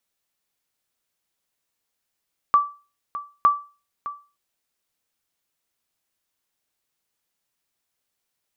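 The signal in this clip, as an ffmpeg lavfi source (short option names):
-f lavfi -i "aevalsrc='0.376*(sin(2*PI*1160*mod(t,0.91))*exp(-6.91*mod(t,0.91)/0.33)+0.178*sin(2*PI*1160*max(mod(t,0.91)-0.61,0))*exp(-6.91*max(mod(t,0.91)-0.61,0)/0.33))':d=1.82:s=44100"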